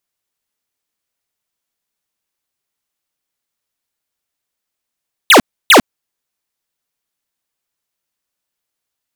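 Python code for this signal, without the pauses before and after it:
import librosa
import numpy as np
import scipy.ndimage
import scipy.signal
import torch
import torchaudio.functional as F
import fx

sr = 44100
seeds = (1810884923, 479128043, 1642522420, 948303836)

y = fx.laser_zaps(sr, level_db=-5, start_hz=4100.0, end_hz=190.0, length_s=0.1, wave='square', shots=2, gap_s=0.3)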